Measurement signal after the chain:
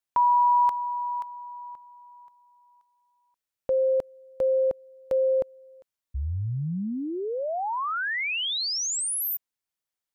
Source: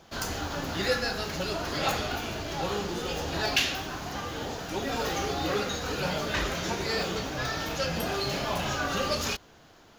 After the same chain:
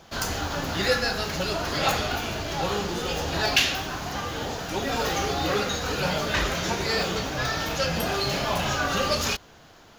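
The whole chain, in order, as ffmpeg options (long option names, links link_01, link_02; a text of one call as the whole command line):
ffmpeg -i in.wav -af "equalizer=frequency=320:width=1.3:gain=-2.5,volume=4.5dB" out.wav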